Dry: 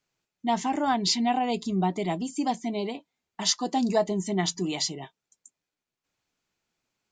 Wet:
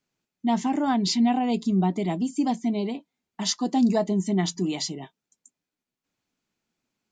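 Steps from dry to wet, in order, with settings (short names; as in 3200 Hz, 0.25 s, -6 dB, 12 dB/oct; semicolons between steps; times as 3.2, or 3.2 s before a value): bell 230 Hz +8.5 dB 1.1 oct; gain -2 dB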